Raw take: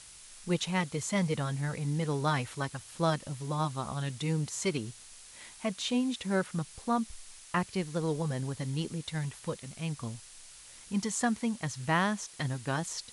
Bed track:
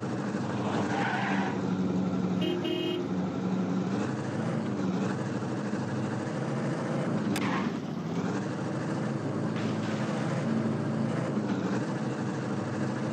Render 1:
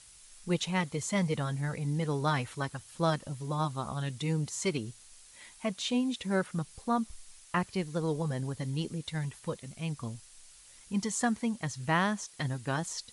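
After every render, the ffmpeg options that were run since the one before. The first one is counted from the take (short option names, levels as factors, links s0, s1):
-af "afftdn=nr=6:nf=-52"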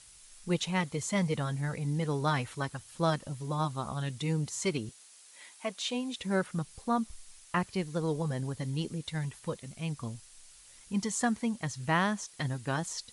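-filter_complex "[0:a]asettb=1/sr,asplit=3[s0][s1][s2];[s0]atrim=end=4.894[s3];[s1]atrim=start=4.89:end=6.18,asetpts=PTS-STARTPTS,afade=t=in:d=0.004:c=qsin,afade=t=out:st=1.286:d=0.004:c=qsin,highpass=330[s4];[s2]atrim=start=6.176[s5];[s3][s4]acrossfade=d=0.004:c1=hsin:c2=qsin[s6];[s6][s5]acrossfade=d=0.004:c1=qsin:c2=hsin"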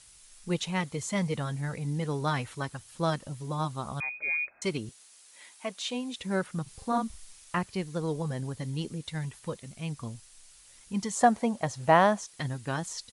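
-filter_complex "[0:a]asettb=1/sr,asplit=3[s0][s1][s2];[s0]atrim=end=4.004[s3];[s1]atrim=start=4:end=4.62,asetpts=PTS-STARTPTS,afade=t=in:d=0.004:c=qsin,afade=t=out:st=0.616:d=0.004:c=qsin,lowpass=f=2200:t=q:w=0.5098,lowpass=f=2200:t=q:w=0.6013,lowpass=f=2200:t=q:w=0.9,lowpass=f=2200:t=q:w=2.563,afreqshift=-2600[s4];[s2]atrim=start=4.616[s5];[s3][s4]acrossfade=d=0.004:c1=hsin:c2=qsin[s6];[s6][s5]acrossfade=d=0.004:c1=qsin:c2=hsin,asplit=3[s7][s8][s9];[s7]afade=t=out:st=6.66:d=0.02[s10];[s8]asplit=2[s11][s12];[s12]adelay=41,volume=0.794[s13];[s11][s13]amix=inputs=2:normalize=0,afade=t=in:st=6.66:d=0.02,afade=t=out:st=7.57:d=0.02[s14];[s9]afade=t=in:st=7.57:d=0.02[s15];[s10][s14][s15]amix=inputs=3:normalize=0,asettb=1/sr,asplit=3[s16][s17][s18];[s16]atrim=end=11.164[s19];[s17]atrim=start=11.16:end=12.19,asetpts=PTS-STARTPTS,afade=t=in:d=0.004:c=qsin,afade=t=out:st=1.026:d=0.004:c=qsin,equalizer=f=650:w=1.1:g=14[s20];[s18]atrim=start=12.186[s21];[s19][s20]acrossfade=d=0.004:c1=hsin:c2=qsin[s22];[s22][s21]acrossfade=d=0.004:c1=qsin:c2=hsin"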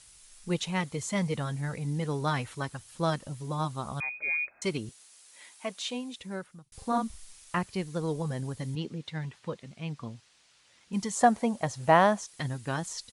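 -filter_complex "[0:a]asettb=1/sr,asplit=3[s0][s1][s2];[s0]atrim=end=8.754[s3];[s1]atrim=start=8.75:end=10.93,asetpts=PTS-STARTPTS,afade=t=in:d=0.004:c=qsin,afade=t=out:st=2.176:d=0.004:c=qsin,highpass=120,lowpass=4300[s4];[s2]atrim=start=10.926[s5];[s3][s4]acrossfade=d=0.004:c1=hsin:c2=qsin[s6];[s6][s5]acrossfade=d=0.004:c1=qsin:c2=hsin,asplit=2[s7][s8];[s7]atrim=end=6.72,asetpts=PTS-STARTPTS,afade=t=out:st=5.8:d=0.92[s9];[s8]atrim=start=6.72,asetpts=PTS-STARTPTS,afade=t=in:d=0.004:c=hsin[s10];[s9][s10]concat=n=2:v=0:a=1"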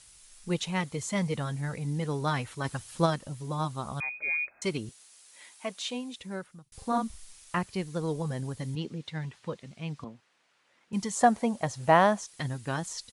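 -filter_complex "[0:a]asplit=3[s0][s1][s2];[s0]afade=t=out:st=2.64:d=0.02[s3];[s1]acontrast=29,afade=t=in:st=2.64:d=0.02,afade=t=out:st=3.05:d=0.02[s4];[s2]afade=t=in:st=3.05:d=0.02[s5];[s3][s4][s5]amix=inputs=3:normalize=0,asettb=1/sr,asplit=3[s6][s7][s8];[s6]atrim=end=10.044[s9];[s7]atrim=start=10.04:end=10.93,asetpts=PTS-STARTPTS,afade=t=in:d=0.004:c=qsin,afade=t=out:st=0.886:d=0.004:c=qsin,acrossover=split=170 2400:gain=0.112 1 0.224[s10][s11][s12];[s10][s11][s12]amix=inputs=3:normalize=0[s13];[s8]atrim=start=10.926[s14];[s9][s13]acrossfade=d=0.004:c1=hsin:c2=qsin[s15];[s15][s14]acrossfade=d=0.004:c1=qsin:c2=hsin"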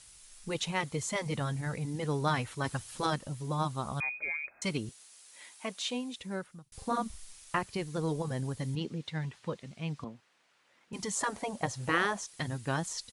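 -af "afftfilt=real='re*lt(hypot(re,im),0.316)':imag='im*lt(hypot(re,im),0.316)':win_size=1024:overlap=0.75"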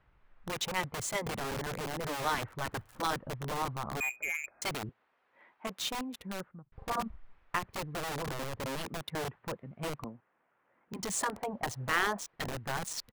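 -filter_complex "[0:a]acrossover=split=520|1800[s0][s1][s2];[s0]aeval=exprs='(mod(42.2*val(0)+1,2)-1)/42.2':c=same[s3];[s2]acrusher=bits=5:mix=0:aa=0.5[s4];[s3][s1][s4]amix=inputs=3:normalize=0"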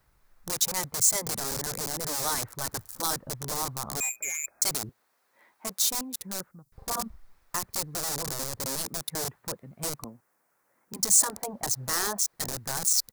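-filter_complex "[0:a]acrossover=split=1100[s0][s1];[s1]asoftclip=type=tanh:threshold=0.0251[s2];[s0][s2]amix=inputs=2:normalize=0,aexciter=amount=7.9:drive=5.1:freq=4300"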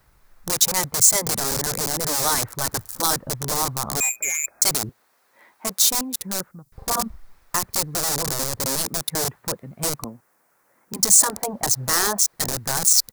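-af "volume=2.51,alimiter=limit=0.708:level=0:latency=1"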